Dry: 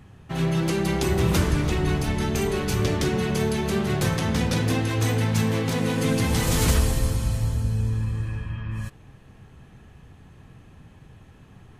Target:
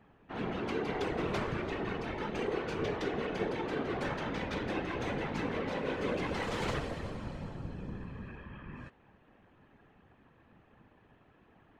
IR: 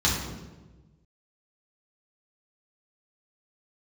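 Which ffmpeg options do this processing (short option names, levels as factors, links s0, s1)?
-af "adynamicsmooth=sensitivity=1.5:basefreq=3800,afftfilt=real='hypot(re,im)*cos(2*PI*random(0))':imag='hypot(re,im)*sin(2*PI*random(1))':win_size=512:overlap=0.75,bass=f=250:g=-13,treble=f=4000:g=-9"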